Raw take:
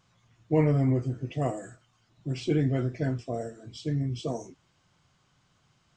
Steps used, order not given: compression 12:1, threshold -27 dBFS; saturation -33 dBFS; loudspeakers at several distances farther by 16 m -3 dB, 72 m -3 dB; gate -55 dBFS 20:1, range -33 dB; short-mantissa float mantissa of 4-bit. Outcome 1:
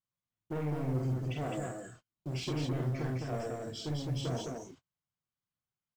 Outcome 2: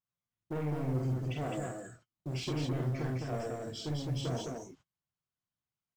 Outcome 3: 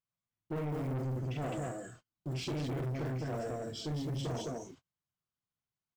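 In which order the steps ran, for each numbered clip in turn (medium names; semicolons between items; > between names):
compression > saturation > short-mantissa float > loudspeakers at several distances > gate; gate > compression > saturation > short-mantissa float > loudspeakers at several distances; short-mantissa float > compression > loudspeakers at several distances > saturation > gate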